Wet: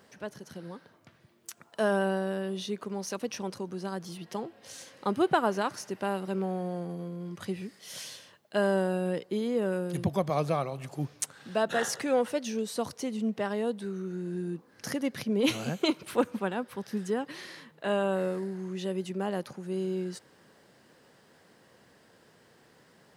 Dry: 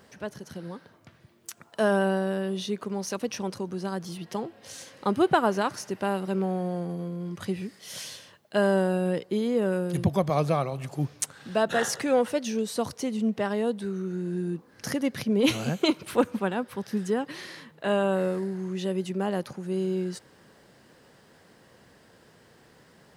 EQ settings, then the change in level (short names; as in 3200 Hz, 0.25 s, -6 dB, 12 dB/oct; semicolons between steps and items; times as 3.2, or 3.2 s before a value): low shelf 71 Hz -11.5 dB; -3.0 dB